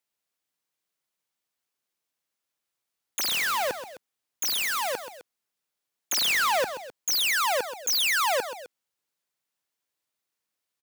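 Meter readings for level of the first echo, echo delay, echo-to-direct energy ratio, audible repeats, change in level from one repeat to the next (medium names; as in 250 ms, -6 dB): -11.5 dB, 129 ms, -10.5 dB, 2, -5.0 dB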